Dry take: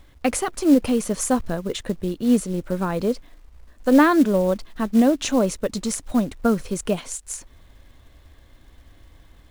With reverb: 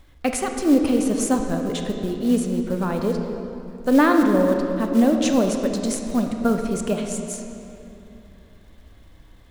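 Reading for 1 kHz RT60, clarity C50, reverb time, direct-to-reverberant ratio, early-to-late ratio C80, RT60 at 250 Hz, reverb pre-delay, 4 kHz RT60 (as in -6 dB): 2.7 s, 4.5 dB, 2.9 s, 4.0 dB, 5.5 dB, 3.4 s, 23 ms, 1.9 s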